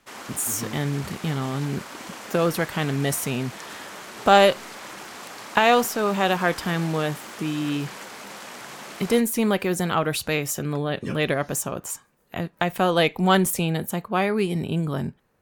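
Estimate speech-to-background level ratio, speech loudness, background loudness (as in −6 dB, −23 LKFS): 14.0 dB, −24.0 LKFS, −38.0 LKFS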